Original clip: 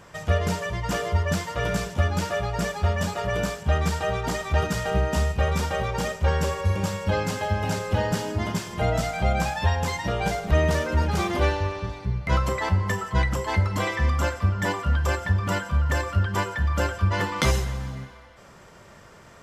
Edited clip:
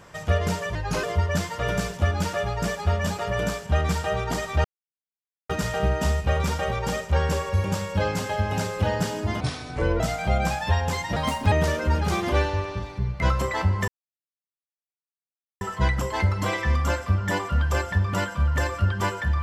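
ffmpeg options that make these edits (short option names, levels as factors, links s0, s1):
-filter_complex "[0:a]asplit=9[s0][s1][s2][s3][s4][s5][s6][s7][s8];[s0]atrim=end=0.754[s9];[s1]atrim=start=0.75:end=1,asetpts=PTS-STARTPTS,asetrate=38808,aresample=44100,atrim=end_sample=12528,asetpts=PTS-STARTPTS[s10];[s2]atrim=start=0.996:end=4.61,asetpts=PTS-STARTPTS,afade=t=out:st=3.61:d=0.004:c=hsin,apad=pad_dur=0.85[s11];[s3]atrim=start=4.61:end=8.524,asetpts=PTS-STARTPTS,afade=t=in:d=0.004:c=hsin[s12];[s4]atrim=start=8.52:end=8.95,asetpts=PTS-STARTPTS,asetrate=31752,aresample=44100[s13];[s5]atrim=start=8.946:end=10.114[s14];[s6]atrim=start=10.11:end=10.59,asetpts=PTS-STARTPTS,asetrate=59094,aresample=44100,atrim=end_sample=15797,asetpts=PTS-STARTPTS[s15];[s7]atrim=start=10.586:end=12.95,asetpts=PTS-STARTPTS,afade=t=out:st=2.36:d=0.004:c=hsin,apad=pad_dur=1.73[s16];[s8]atrim=start=12.95,asetpts=PTS-STARTPTS,afade=t=in:d=0.004:c=hsin[s17];[s9][s10]acrossfade=d=0.004:c1=hsin:c2=hsin[s18];[s11][s12]concat=n=2:v=0:a=1[s19];[s18][s19]acrossfade=d=0.004:c1=hsin:c2=hsin[s20];[s20][s13]acrossfade=d=0.004:c1=hsin:c2=hsin[s21];[s21][s14]acrossfade=d=0.004:c1=hsin:c2=hsin[s22];[s22][s15]acrossfade=d=0.004:c1=hsin:c2=hsin[s23];[s16][s17]concat=n=2:v=0:a=1[s24];[s23][s24]acrossfade=d=0.004:c1=hsin:c2=hsin"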